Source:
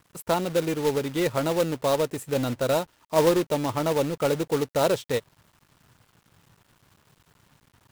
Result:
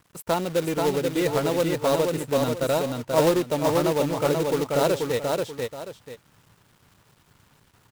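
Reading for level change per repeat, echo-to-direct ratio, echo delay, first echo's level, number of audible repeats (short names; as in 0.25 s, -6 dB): -10.5 dB, -3.0 dB, 0.484 s, -3.5 dB, 2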